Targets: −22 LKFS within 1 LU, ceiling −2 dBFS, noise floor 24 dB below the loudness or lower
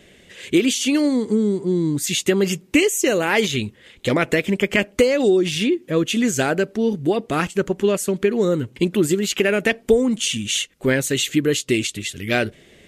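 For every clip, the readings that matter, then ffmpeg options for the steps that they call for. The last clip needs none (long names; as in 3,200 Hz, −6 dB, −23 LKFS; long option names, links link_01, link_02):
integrated loudness −20.0 LKFS; sample peak −4.5 dBFS; target loudness −22.0 LKFS
→ -af "volume=-2dB"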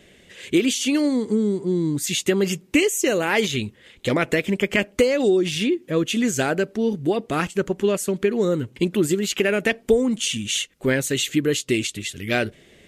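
integrated loudness −22.0 LKFS; sample peak −6.5 dBFS; background noise floor −54 dBFS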